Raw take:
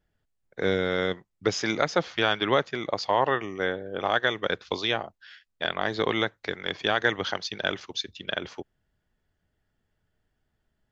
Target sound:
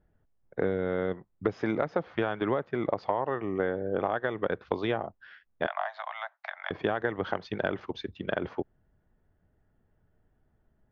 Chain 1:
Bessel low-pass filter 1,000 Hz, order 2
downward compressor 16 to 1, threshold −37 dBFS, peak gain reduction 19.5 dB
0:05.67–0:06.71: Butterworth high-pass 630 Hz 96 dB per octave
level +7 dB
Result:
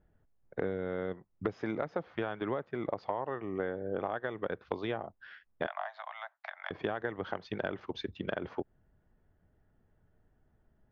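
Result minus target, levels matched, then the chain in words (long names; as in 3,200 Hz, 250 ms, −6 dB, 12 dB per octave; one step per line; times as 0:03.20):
downward compressor: peak gain reduction +6 dB
Bessel low-pass filter 1,000 Hz, order 2
downward compressor 16 to 1, threshold −30.5 dBFS, peak gain reduction 13 dB
0:05.67–0:06.71: Butterworth high-pass 630 Hz 96 dB per octave
level +7 dB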